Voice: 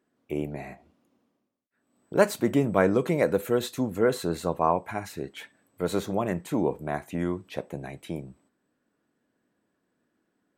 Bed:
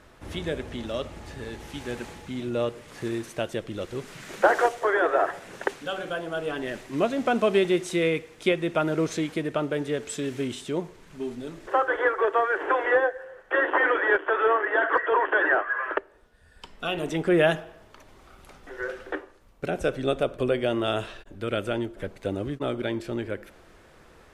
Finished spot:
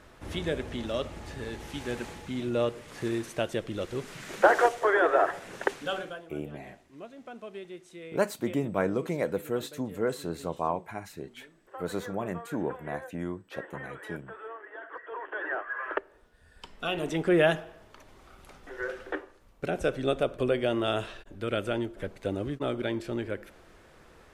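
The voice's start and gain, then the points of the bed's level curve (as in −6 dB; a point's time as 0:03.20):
6.00 s, −6.0 dB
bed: 0:05.96 −0.5 dB
0:06.36 −20.5 dB
0:14.90 −20.5 dB
0:16.07 −2 dB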